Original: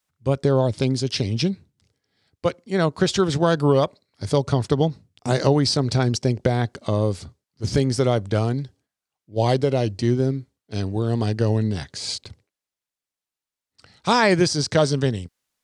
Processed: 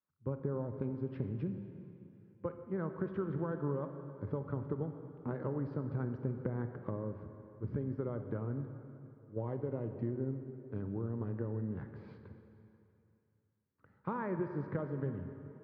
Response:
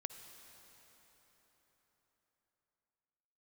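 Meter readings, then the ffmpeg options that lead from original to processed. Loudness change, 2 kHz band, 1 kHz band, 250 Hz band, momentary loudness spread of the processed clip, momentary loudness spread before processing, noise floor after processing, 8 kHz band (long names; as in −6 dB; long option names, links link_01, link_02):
−17.5 dB, −23.5 dB, −20.5 dB, −15.5 dB, 12 LU, 11 LU, −76 dBFS, below −40 dB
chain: -filter_complex "[0:a]lowpass=frequency=1400:width=0.5412,lowpass=frequency=1400:width=1.3066,acompressor=threshold=-24dB:ratio=6,highpass=92,equalizer=frequency=710:width=4.3:gain=-13.5[link_01];[1:a]atrim=start_sample=2205,asetrate=70560,aresample=44100[link_02];[link_01][link_02]afir=irnorm=-1:irlink=0,volume=-1dB"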